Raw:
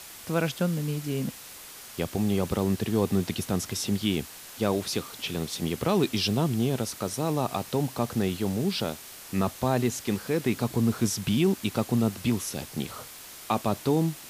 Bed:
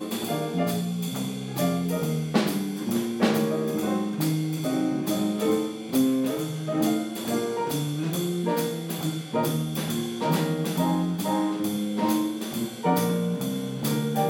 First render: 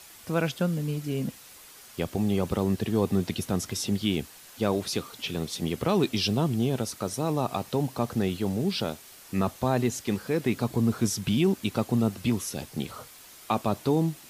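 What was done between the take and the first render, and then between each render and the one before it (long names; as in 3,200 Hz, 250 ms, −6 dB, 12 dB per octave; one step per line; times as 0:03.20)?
broadband denoise 6 dB, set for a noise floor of −45 dBFS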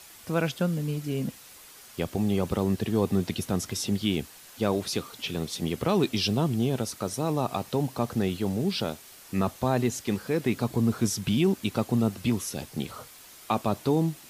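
no processing that can be heard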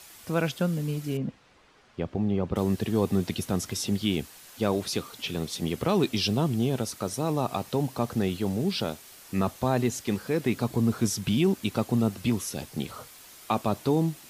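0:01.17–0:02.56: head-to-tape spacing loss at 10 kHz 29 dB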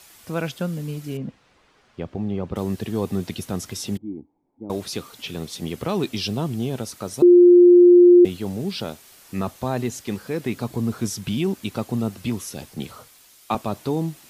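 0:03.97–0:04.70: formant resonators in series u
0:07.22–0:08.25: beep over 353 Hz −7 dBFS
0:12.74–0:13.55: multiband upward and downward expander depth 40%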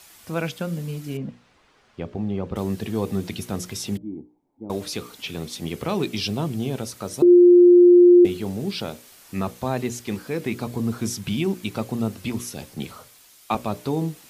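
mains-hum notches 60/120/180/240/300/360/420/480/540/600 Hz
dynamic equaliser 2,300 Hz, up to +4 dB, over −52 dBFS, Q 6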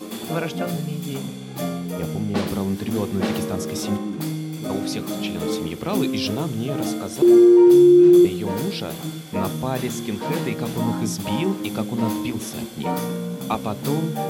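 mix in bed −2 dB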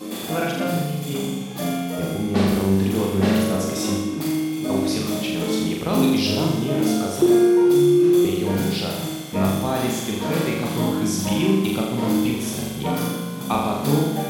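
flutter between parallel walls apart 7.1 metres, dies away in 0.99 s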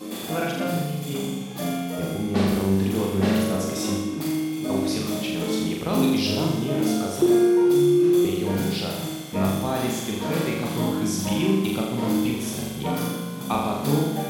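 level −2.5 dB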